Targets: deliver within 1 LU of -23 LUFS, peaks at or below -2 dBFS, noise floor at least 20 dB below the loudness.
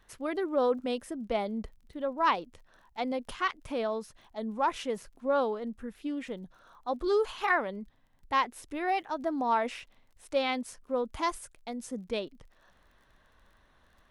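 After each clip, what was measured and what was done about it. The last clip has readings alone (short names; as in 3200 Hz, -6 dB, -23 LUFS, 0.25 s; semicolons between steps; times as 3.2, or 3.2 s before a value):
ticks 29/s; loudness -32.0 LUFS; peak -13.0 dBFS; loudness target -23.0 LUFS
-> de-click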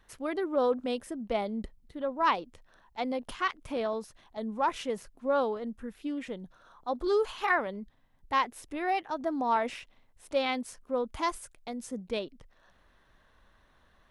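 ticks 0/s; loudness -32.0 LUFS; peak -13.0 dBFS; loudness target -23.0 LUFS
-> gain +9 dB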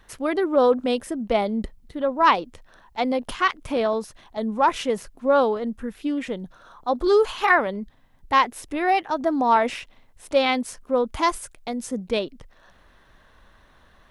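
loudness -23.0 LUFS; peak -4.0 dBFS; noise floor -56 dBFS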